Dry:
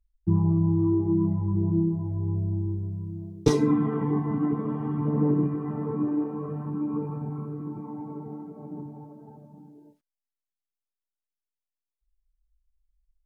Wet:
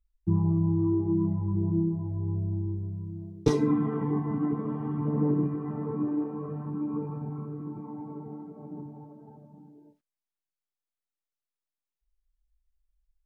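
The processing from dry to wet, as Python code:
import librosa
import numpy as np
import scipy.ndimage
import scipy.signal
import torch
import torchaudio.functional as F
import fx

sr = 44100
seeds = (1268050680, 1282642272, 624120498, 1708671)

y = fx.high_shelf(x, sr, hz=4900.0, db=-6.0)
y = y * 10.0 ** (-2.5 / 20.0)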